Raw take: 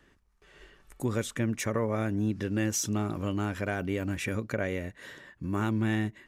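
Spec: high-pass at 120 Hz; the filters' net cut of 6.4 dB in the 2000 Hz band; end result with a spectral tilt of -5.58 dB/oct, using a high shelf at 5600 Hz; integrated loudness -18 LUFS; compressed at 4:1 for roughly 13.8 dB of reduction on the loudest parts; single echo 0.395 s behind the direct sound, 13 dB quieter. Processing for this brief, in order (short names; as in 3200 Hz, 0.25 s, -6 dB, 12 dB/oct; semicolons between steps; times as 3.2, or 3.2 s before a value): HPF 120 Hz; bell 2000 Hz -7.5 dB; high shelf 5600 Hz -8.5 dB; compressor 4:1, threshold -42 dBFS; echo 0.395 s -13 dB; gain +27 dB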